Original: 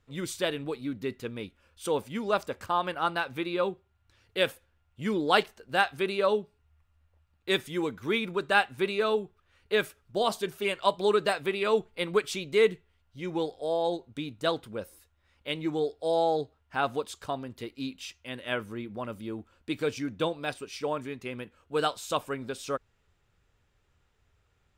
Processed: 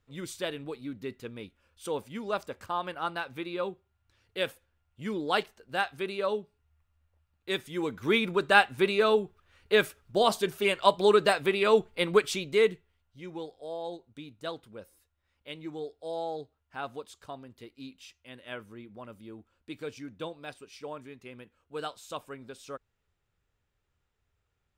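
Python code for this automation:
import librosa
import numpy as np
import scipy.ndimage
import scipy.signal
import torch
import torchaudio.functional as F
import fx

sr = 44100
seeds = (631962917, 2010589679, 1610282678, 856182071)

y = fx.gain(x, sr, db=fx.line((7.64, -4.5), (8.09, 3.0), (12.22, 3.0), (13.42, -9.0)))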